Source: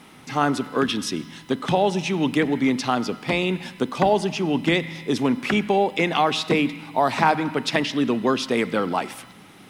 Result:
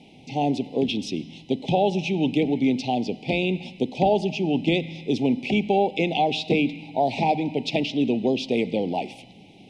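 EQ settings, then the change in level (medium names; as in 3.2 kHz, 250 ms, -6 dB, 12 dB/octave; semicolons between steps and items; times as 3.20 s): elliptic band-stop 790–2400 Hz, stop band 50 dB; low-pass 4.2 kHz 12 dB/octave; 0.0 dB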